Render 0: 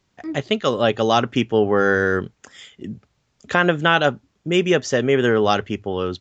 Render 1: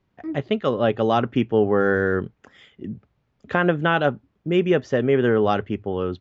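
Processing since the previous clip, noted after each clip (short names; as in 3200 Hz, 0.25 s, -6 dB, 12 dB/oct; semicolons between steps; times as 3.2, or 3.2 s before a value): LPF 2400 Hz 12 dB/oct; bell 1700 Hz -4 dB 3 oct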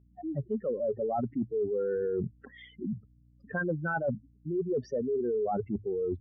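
spectral contrast raised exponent 3.4; reverse; compressor 5:1, threshold -29 dBFS, peak gain reduction 12.5 dB; reverse; hum 60 Hz, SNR 30 dB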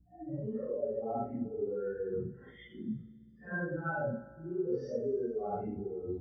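phase scrambler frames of 0.2 s; on a send at -14.5 dB: reverb RT60 1.9 s, pre-delay 3 ms; on the sum: gain -4.5 dB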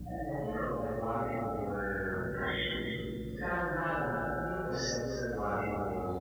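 bell 530 Hz +11.5 dB 0.35 oct; echo 0.285 s -14.5 dB; spectral compressor 10:1; gain -6 dB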